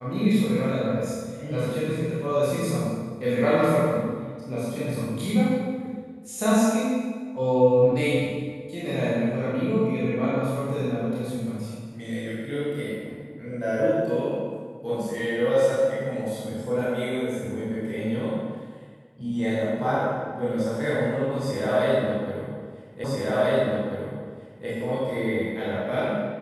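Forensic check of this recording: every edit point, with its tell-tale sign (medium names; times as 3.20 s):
23.04 s: repeat of the last 1.64 s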